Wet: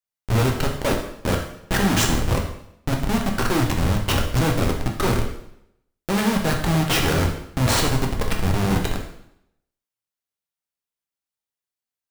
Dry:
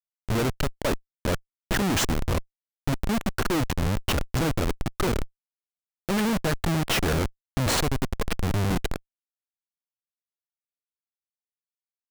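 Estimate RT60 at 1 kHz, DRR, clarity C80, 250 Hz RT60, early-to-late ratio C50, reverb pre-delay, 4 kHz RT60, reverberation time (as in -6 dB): 0.75 s, 0.5 dB, 9.5 dB, 0.80 s, 6.0 dB, 4 ms, 0.70 s, 0.75 s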